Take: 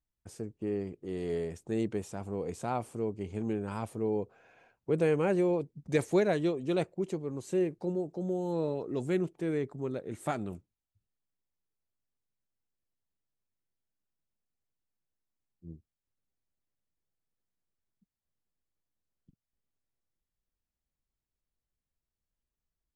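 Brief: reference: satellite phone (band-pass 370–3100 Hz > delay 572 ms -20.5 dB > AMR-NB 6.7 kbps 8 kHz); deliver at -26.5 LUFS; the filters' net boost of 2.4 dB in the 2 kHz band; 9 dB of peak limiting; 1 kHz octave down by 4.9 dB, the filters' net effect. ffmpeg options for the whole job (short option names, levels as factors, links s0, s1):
-af "equalizer=f=1000:t=o:g=-8.5,equalizer=f=2000:t=o:g=6.5,alimiter=limit=0.0794:level=0:latency=1,highpass=370,lowpass=3100,aecho=1:1:572:0.0944,volume=4.22" -ar 8000 -c:a libopencore_amrnb -b:a 6700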